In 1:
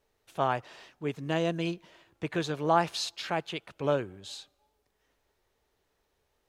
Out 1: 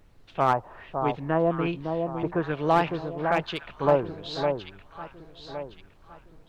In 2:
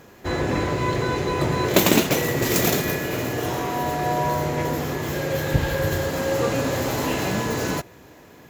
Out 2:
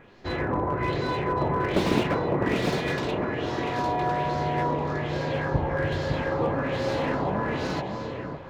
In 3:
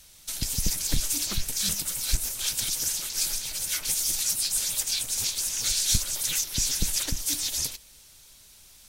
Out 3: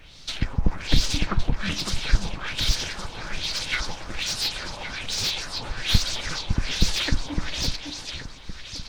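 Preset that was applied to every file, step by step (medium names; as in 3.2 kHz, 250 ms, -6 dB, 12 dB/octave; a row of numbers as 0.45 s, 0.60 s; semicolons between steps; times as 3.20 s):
treble shelf 3.8 kHz -8 dB; LFO low-pass sine 1.2 Hz 900–4800 Hz; added noise brown -57 dBFS; echo whose repeats swap between lows and highs 557 ms, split 1.1 kHz, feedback 57%, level -5 dB; slew-rate limiter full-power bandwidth 140 Hz; normalise loudness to -27 LUFS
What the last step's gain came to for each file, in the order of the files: +3.5 dB, -5.0 dB, +7.5 dB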